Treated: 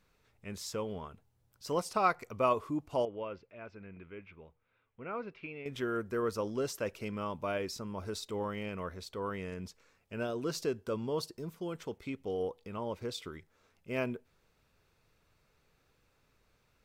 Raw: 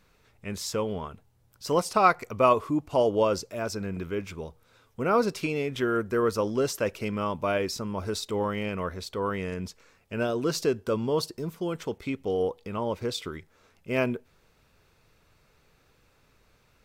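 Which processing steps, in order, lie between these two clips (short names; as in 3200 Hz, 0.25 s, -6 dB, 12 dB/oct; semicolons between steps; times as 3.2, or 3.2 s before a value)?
3.05–5.66 ladder low-pass 2900 Hz, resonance 45%; gain -8 dB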